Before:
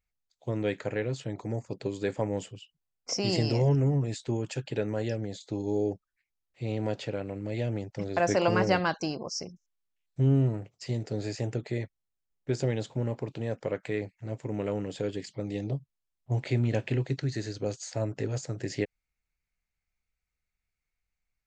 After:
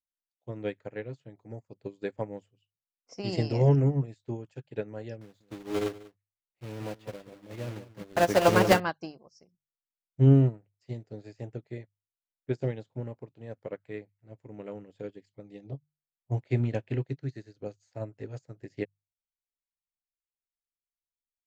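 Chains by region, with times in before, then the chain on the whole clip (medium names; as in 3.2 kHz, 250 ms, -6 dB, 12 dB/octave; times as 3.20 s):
5.21–8.80 s: block-companded coder 3-bit + delay 191 ms -7.5 dB
whole clip: treble shelf 4.4 kHz -8 dB; hum notches 50/100/150 Hz; upward expansion 2.5:1, over -41 dBFS; trim +6 dB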